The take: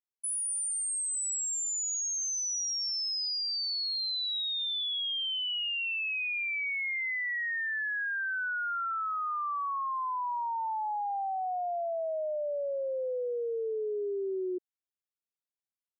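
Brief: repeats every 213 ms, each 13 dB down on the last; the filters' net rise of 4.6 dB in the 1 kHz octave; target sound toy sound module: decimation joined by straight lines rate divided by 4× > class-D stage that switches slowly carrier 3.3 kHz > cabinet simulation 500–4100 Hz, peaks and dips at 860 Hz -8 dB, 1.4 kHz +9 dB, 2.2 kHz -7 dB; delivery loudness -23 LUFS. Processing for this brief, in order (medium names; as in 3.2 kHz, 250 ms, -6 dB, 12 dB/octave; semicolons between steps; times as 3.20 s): peaking EQ 1 kHz +5.5 dB; feedback delay 213 ms, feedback 22%, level -13 dB; decimation joined by straight lines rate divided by 4×; class-D stage that switches slowly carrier 3.3 kHz; cabinet simulation 500–4100 Hz, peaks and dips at 860 Hz -8 dB, 1.4 kHz +9 dB, 2.2 kHz -7 dB; trim +10.5 dB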